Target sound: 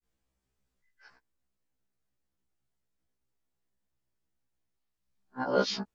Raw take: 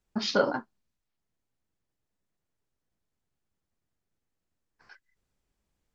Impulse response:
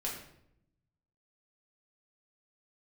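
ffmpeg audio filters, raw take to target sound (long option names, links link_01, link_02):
-af "areverse,afftfilt=real='re*1.73*eq(mod(b,3),0)':imag='im*1.73*eq(mod(b,3),0)':win_size=2048:overlap=0.75"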